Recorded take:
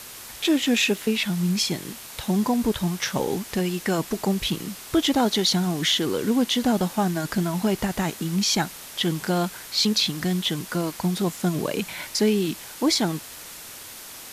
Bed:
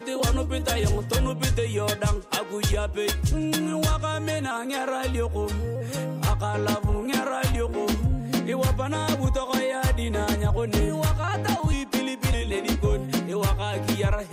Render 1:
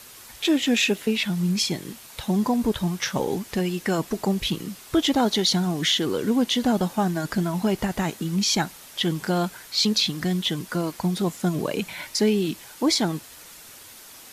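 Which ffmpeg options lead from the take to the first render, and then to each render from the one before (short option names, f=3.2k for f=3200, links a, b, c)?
-af "afftdn=nr=6:nf=-41"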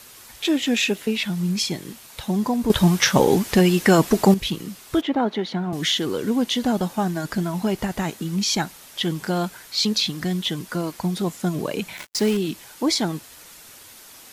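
-filter_complex "[0:a]asettb=1/sr,asplit=3[a][b][c];[a]atrim=end=5.014[d];[b]atrim=start=5.01:end=5.73,asetpts=PTS-STARTPTS,afade=t=in:d=0.004:c=qsin,afade=t=out:st=0.716:d=0.004:c=qsin,acrossover=split=150 2700:gain=0.141 1 0.0631[e][f][g];[e][f][g]amix=inputs=3:normalize=0[h];[c]atrim=start=5.726[i];[d][h]acrossfade=d=0.004:c1=hsin:c2=qsin[j];[j][i]acrossfade=d=0.004:c1=qsin:c2=hsin,asettb=1/sr,asplit=3[k][l][m];[k]atrim=end=11.974[n];[l]atrim=start=11.97:end=12.37,asetpts=PTS-STARTPTS,afade=t=in:d=0.004:c=qsin,afade=t=out:st=0.396:d=0.004:c=qsin,acrusher=bits=4:mix=0:aa=0.5[o];[m]atrim=start=12.366[p];[n][o]acrossfade=d=0.004:c1=hsin:c2=qsin[q];[q][p]acrossfade=d=0.004:c1=qsin:c2=hsin,asplit=3[r][s][t];[r]atrim=end=2.702[u];[s]atrim=start=2.698:end=4.342,asetpts=PTS-STARTPTS,volume=9dB[v];[t]atrim=start=4.338[w];[u][v]acrossfade=d=0.004:c1=hsin:c2=hsin[x];[x][w]acrossfade=d=0.004:c1=hsin:c2=hsin"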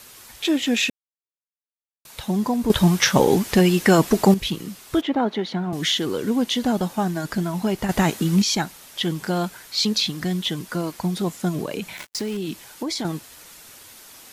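-filter_complex "[0:a]asettb=1/sr,asplit=3[a][b][c];[a]atrim=end=11.634[d];[b]atrim=start=11.63:end=13.05,asetpts=PTS-STARTPTS,afade=t=in:d=0.004:c=qsin,afade=t=out:st=1.416:d=0.004:c=qsin,acompressor=threshold=-23dB:ratio=6:attack=3.2:release=140:knee=1:detection=peak[e];[c]atrim=start=13.046[f];[d][e]acrossfade=d=0.004:c1=hsin:c2=qsin[g];[g][f]acrossfade=d=0.004:c1=qsin:c2=hsin,asplit=5[h][i][j][k][l];[h]atrim=end=0.9,asetpts=PTS-STARTPTS,afade=t=out:st=0.896:d=0.004:c=hsin[m];[i]atrim=start=0.9:end=2.05,asetpts=PTS-STARTPTS,volume=0[n];[j]atrim=start=2.05:end=7.892,asetpts=PTS-STARTPTS,afade=t=in:d=0.004:c=hsin[o];[k]atrim=start=7.888:end=8.422,asetpts=PTS-STARTPTS,volume=6.5dB[p];[l]atrim=start=8.418[q];[m][n][o]concat=n=3:v=0:a=1[r];[r][p]acrossfade=d=0.004:c1=hsin:c2=hsin[s];[s][q]acrossfade=d=0.004:c1=hsin:c2=hsin"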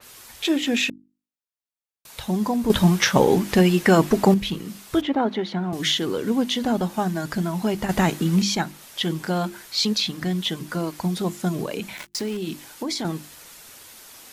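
-af "bandreject=f=50:t=h:w=6,bandreject=f=100:t=h:w=6,bandreject=f=150:t=h:w=6,bandreject=f=200:t=h:w=6,bandreject=f=250:t=h:w=6,bandreject=f=300:t=h:w=6,bandreject=f=350:t=h:w=6,adynamicequalizer=threshold=0.0126:dfrequency=3500:dqfactor=0.7:tfrequency=3500:tqfactor=0.7:attack=5:release=100:ratio=0.375:range=3:mode=cutabove:tftype=highshelf"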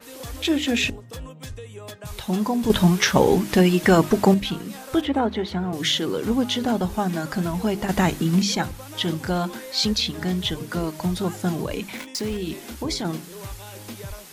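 -filter_complex "[1:a]volume=-13dB[a];[0:a][a]amix=inputs=2:normalize=0"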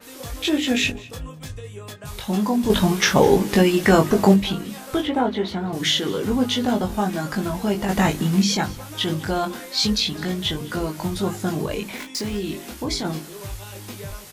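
-filter_complex "[0:a]asplit=2[a][b];[b]adelay=20,volume=-3.5dB[c];[a][c]amix=inputs=2:normalize=0,aecho=1:1:206:0.0841"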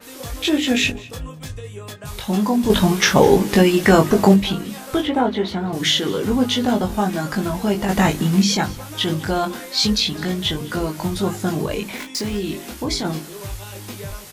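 -af "volume=2.5dB,alimiter=limit=-1dB:level=0:latency=1"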